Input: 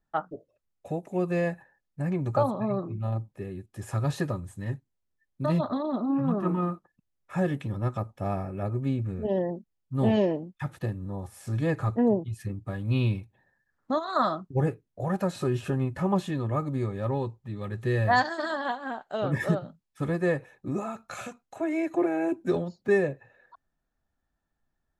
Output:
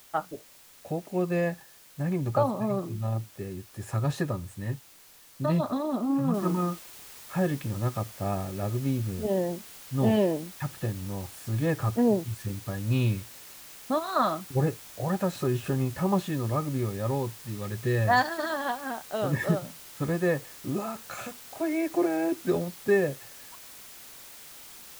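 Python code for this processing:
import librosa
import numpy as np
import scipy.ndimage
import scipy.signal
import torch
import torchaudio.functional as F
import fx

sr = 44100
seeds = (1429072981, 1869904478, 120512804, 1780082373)

y = fx.noise_floor_step(x, sr, seeds[0], at_s=6.34, before_db=-54, after_db=-47, tilt_db=0.0)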